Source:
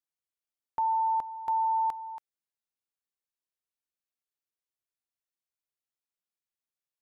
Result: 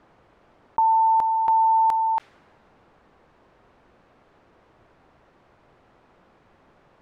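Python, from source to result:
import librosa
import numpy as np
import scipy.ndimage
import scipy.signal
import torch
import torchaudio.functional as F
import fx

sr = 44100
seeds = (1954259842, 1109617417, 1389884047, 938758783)

y = fx.env_lowpass(x, sr, base_hz=1000.0, full_db=-28.0)
y = fx.env_flatten(y, sr, amount_pct=70)
y = y * librosa.db_to_amplitude(8.5)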